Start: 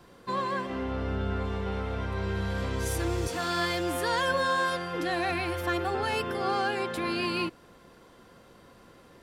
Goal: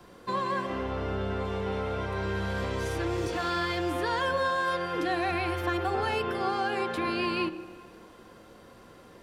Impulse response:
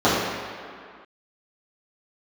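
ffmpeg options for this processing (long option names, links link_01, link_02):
-filter_complex "[0:a]acrossover=split=170|4700[link_01][link_02][link_03];[link_01]acompressor=threshold=-35dB:ratio=4[link_04];[link_02]acompressor=threshold=-28dB:ratio=4[link_05];[link_03]acompressor=threshold=-55dB:ratio=4[link_06];[link_04][link_05][link_06]amix=inputs=3:normalize=0,asplit=2[link_07][link_08];[1:a]atrim=start_sample=2205[link_09];[link_08][link_09]afir=irnorm=-1:irlink=0,volume=-33.5dB[link_10];[link_07][link_10]amix=inputs=2:normalize=0,volume=1.5dB"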